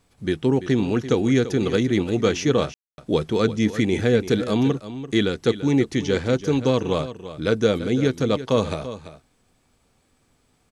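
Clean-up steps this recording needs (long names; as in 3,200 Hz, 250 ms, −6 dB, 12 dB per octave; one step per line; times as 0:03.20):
ambience match 0:02.74–0:02.98
echo removal 339 ms −13 dB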